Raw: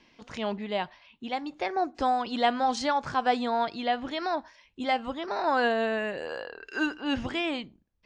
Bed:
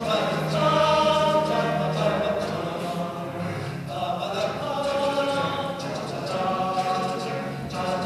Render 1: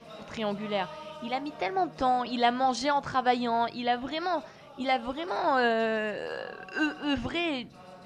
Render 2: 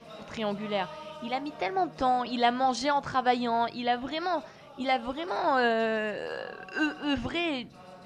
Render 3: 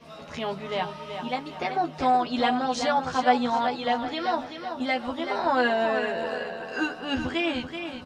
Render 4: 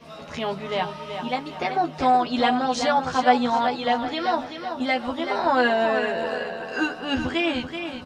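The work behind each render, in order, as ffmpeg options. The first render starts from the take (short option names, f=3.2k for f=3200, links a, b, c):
-filter_complex "[1:a]volume=-22.5dB[a];[0:a][a]amix=inputs=2:normalize=0"
-af anull
-filter_complex "[0:a]asplit=2[a][b];[b]adelay=12,volume=-3dB[c];[a][c]amix=inputs=2:normalize=0,asplit=2[d][e];[e]aecho=0:1:381|762|1143|1524|1905:0.398|0.167|0.0702|0.0295|0.0124[f];[d][f]amix=inputs=2:normalize=0"
-af "volume=3dB"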